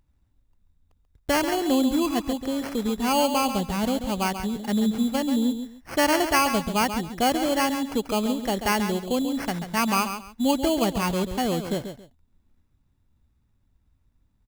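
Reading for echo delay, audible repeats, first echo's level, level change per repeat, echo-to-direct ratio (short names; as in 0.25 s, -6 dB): 0.137 s, 2, -9.0 dB, -12.5 dB, -9.0 dB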